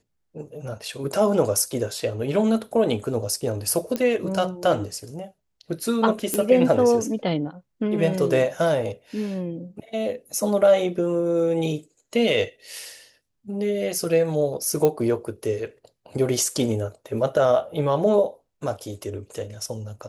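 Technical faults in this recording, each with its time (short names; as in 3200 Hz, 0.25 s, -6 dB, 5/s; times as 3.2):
3.96 pop -12 dBFS
6.34 pop -8 dBFS
14.85 pop -9 dBFS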